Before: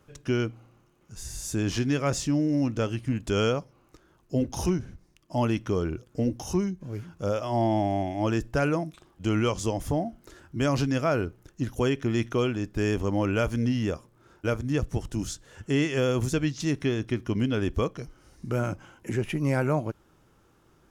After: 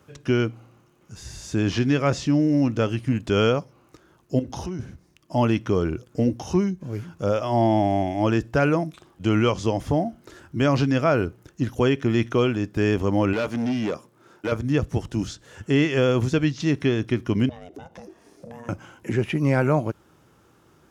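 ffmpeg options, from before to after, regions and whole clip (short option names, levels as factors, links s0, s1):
-filter_complex "[0:a]asettb=1/sr,asplit=3[s0][s1][s2];[s0]atrim=end=4.394[s3];[s1]atrim=start=4.39:end=4.79,asetpts=PTS-STARTPTS,afade=t=in:d=0.004:c=qsin,afade=t=out:st=0.396:d=0.004:c=qsin,bandreject=f=2400:w=13,acompressor=threshold=0.0282:ratio=10:attack=3.2:release=140:knee=1:detection=peak[s4];[s2]atrim=start=4.786[s5];[s3][s4]acrossfade=d=0.004:c1=hsin:c2=qsin[s6];[s6][s5]acrossfade=d=0.004:c1=qsin:c2=hsin,asettb=1/sr,asplit=3[s7][s8][s9];[s7]atrim=end=13.334[s10];[s8]atrim=start=13.33:end=14.52,asetpts=PTS-STARTPTS,afade=t=in:d=0.004:c=qsin,afade=t=out:st=1.186:d=0.004:c=qsin,highpass=160,asoftclip=type=hard:threshold=0.0501[s11];[s9]atrim=start=14.516[s12];[s10][s11]acrossfade=d=0.004:c1=hsin:c2=qsin[s13];[s13][s12]acrossfade=d=0.004:c1=qsin:c2=hsin,asettb=1/sr,asplit=3[s14][s15][s16];[s14]atrim=end=17.494[s17];[s15]atrim=start=17.49:end=18.69,asetpts=PTS-STARTPTS,afade=t=in:d=0.004:c=qsin,afade=t=out:st=1.196:d=0.004:c=qsin,aeval=exprs='val(0)*sin(2*PI*350*n/s)':c=same,acompressor=threshold=0.01:ratio=16:attack=3.2:release=140:knee=1:detection=peak[s18];[s16]atrim=start=18.686[s19];[s17][s18]acrossfade=d=0.004:c1=hsin:c2=qsin[s20];[s20][s19]acrossfade=d=0.004:c1=qsin:c2=hsin,highpass=73,acrossover=split=5300[s21][s22];[s22]acompressor=threshold=0.00126:ratio=4:attack=1:release=60[s23];[s21][s23]amix=inputs=2:normalize=0,volume=1.78"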